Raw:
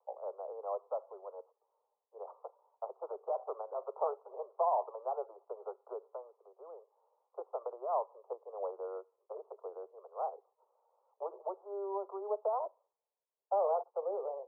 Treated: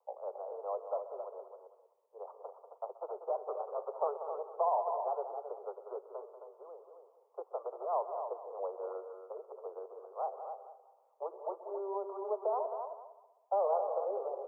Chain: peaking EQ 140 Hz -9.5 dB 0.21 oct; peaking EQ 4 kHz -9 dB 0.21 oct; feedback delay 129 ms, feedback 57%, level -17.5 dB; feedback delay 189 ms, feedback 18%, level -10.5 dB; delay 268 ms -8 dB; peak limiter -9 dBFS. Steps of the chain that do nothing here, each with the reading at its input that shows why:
peaking EQ 140 Hz: input has nothing below 340 Hz; peaking EQ 4 kHz: input has nothing above 1.4 kHz; peak limiter -9 dBFS: peak at its input -19.5 dBFS

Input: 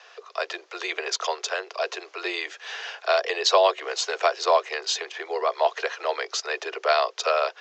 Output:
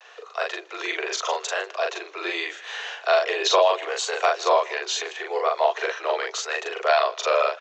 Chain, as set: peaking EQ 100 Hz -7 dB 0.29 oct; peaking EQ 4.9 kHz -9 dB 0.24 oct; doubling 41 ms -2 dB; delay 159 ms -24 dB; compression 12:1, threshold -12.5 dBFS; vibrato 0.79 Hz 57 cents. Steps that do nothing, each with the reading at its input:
peaking EQ 100 Hz: input has nothing below 320 Hz

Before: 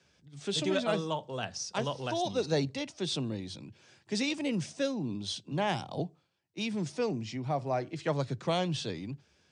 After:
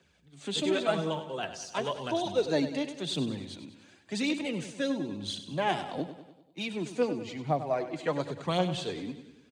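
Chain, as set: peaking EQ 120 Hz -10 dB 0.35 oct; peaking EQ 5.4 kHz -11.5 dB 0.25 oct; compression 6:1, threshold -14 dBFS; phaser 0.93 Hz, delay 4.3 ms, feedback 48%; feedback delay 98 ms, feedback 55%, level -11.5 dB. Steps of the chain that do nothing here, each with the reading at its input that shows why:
compression, threshold -14 dBFS: peak at its input -17.5 dBFS

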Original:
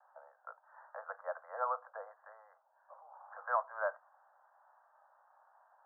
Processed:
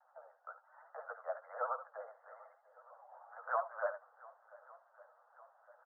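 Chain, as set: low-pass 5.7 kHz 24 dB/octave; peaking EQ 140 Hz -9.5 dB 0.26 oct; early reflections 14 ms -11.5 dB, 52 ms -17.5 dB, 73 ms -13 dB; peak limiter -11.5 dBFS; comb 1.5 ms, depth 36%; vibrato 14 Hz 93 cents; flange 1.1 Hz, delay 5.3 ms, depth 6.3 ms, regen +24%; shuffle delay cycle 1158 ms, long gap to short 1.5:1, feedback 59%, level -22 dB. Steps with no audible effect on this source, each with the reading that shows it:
low-pass 5.7 kHz: input has nothing above 1.8 kHz; peaking EQ 140 Hz: input has nothing below 430 Hz; peak limiter -11.5 dBFS: peak at its input -18.5 dBFS

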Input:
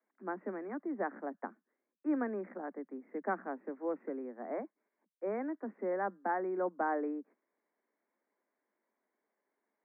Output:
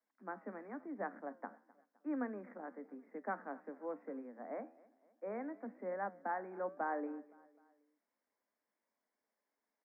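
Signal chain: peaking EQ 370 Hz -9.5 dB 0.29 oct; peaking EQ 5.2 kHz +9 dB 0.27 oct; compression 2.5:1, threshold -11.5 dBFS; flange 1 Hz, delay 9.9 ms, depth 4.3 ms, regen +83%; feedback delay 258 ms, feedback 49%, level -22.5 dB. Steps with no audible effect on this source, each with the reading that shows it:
peaking EQ 5.2 kHz: input has nothing above 2.3 kHz; compression, threshold -11.5 dBFS: peak at its input -22.5 dBFS

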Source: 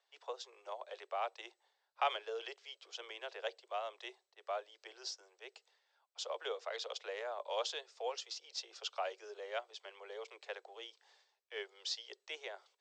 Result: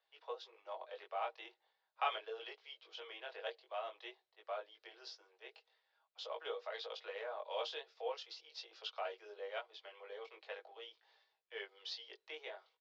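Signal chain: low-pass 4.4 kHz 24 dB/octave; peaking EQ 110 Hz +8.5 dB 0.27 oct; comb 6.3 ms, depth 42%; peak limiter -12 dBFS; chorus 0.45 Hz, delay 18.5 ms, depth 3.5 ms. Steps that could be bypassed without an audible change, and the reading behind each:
peaking EQ 110 Hz: input has nothing below 320 Hz; peak limiter -12 dBFS: peak at its input -20.0 dBFS

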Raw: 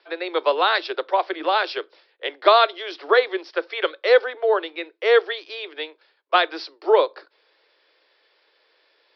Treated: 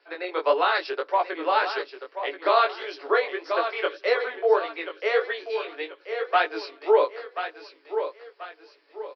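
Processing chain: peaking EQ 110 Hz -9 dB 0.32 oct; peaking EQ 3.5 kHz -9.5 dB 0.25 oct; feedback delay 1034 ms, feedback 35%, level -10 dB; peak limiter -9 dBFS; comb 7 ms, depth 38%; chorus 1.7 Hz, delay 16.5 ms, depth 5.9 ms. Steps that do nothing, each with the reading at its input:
peaking EQ 110 Hz: input has nothing below 300 Hz

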